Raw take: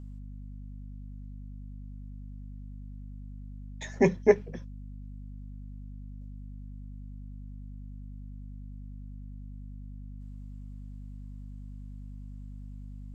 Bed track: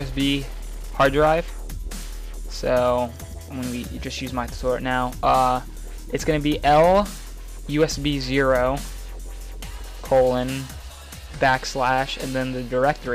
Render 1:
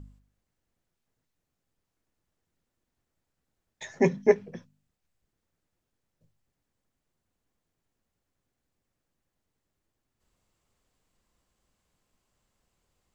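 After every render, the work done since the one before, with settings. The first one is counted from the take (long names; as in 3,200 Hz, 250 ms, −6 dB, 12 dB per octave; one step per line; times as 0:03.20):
hum removal 50 Hz, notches 5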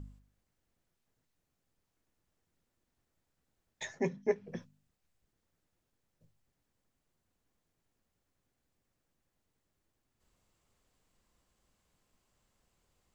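0:03.86–0:04.55: duck −10.5 dB, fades 0.13 s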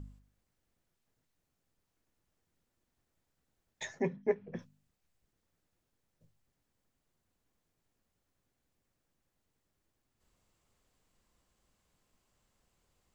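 0:04.02–0:04.59: low-pass filter 2,700 Hz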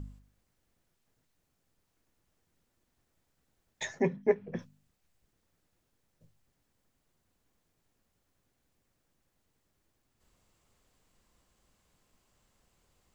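level +4.5 dB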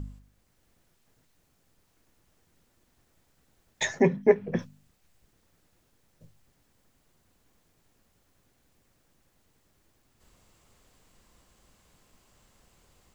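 in parallel at −2.5 dB: brickwall limiter −23 dBFS, peak gain reduction 8.5 dB
on the sum: automatic gain control gain up to 4 dB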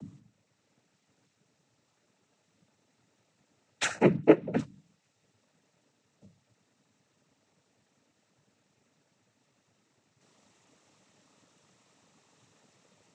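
cochlear-implant simulation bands 12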